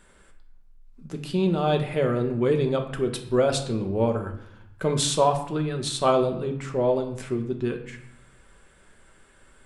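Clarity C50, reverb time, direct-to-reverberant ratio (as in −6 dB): 9.5 dB, 0.70 s, 4.0 dB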